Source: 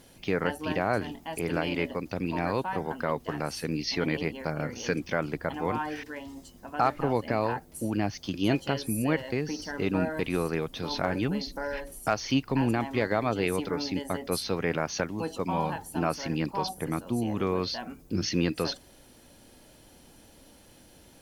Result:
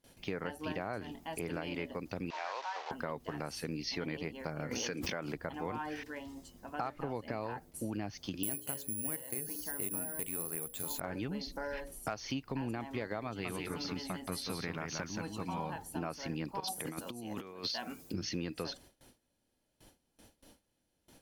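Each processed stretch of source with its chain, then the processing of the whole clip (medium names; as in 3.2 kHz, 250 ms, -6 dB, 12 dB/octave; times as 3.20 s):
2.30–2.91 s: one-bit delta coder 32 kbps, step -30 dBFS + high-pass 650 Hz 24 dB/octave + treble shelf 3.8 kHz -7 dB
4.71–5.35 s: bass shelf 99 Hz -11 dB + swell ahead of each attack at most 24 dB/s
8.43–11.00 s: hum notches 60/120/180/240/300/360/420/480/540/600 Hz + careless resampling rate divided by 4×, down filtered, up zero stuff
13.27–15.60 s: peaking EQ 490 Hz -7.5 dB 0.98 oct + delay 177 ms -5 dB
16.60–18.14 s: high-pass 200 Hz 6 dB/octave + compressor with a negative ratio -35 dBFS, ratio -0.5 + treble shelf 2.4 kHz +8 dB
whole clip: gate with hold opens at -43 dBFS; compression 4:1, threshold -30 dBFS; trim -4.5 dB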